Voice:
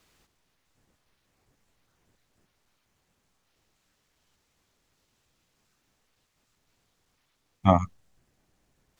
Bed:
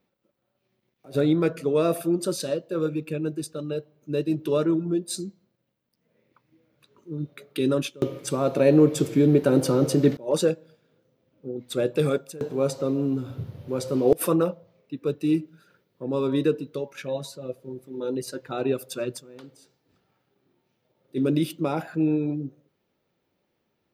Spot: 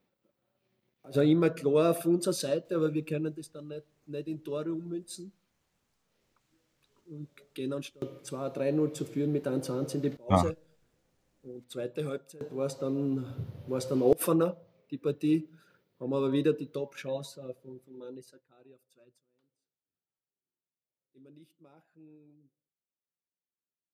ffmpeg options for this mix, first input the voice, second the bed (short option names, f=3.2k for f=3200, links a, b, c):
-filter_complex "[0:a]adelay=2650,volume=-4.5dB[a];[1:a]volume=5dB,afade=t=out:st=3.17:d=0.22:silence=0.354813,afade=t=in:st=12.27:d=1.08:silence=0.421697,afade=t=out:st=16.98:d=1.48:silence=0.0375837[b];[a][b]amix=inputs=2:normalize=0"